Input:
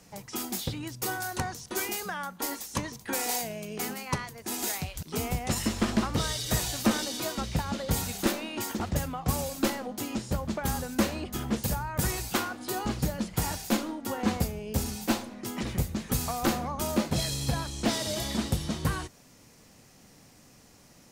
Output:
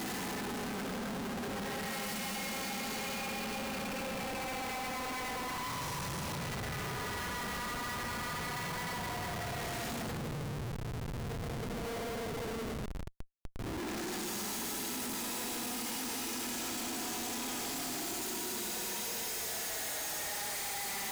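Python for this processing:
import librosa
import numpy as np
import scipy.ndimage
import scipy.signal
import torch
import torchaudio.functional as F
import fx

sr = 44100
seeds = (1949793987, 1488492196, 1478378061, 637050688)

y = fx.paulstretch(x, sr, seeds[0], factor=24.0, window_s=0.05, from_s=3.88)
y = fx.schmitt(y, sr, flips_db=-42.5)
y = y * 10.0 ** (-4.0 / 20.0)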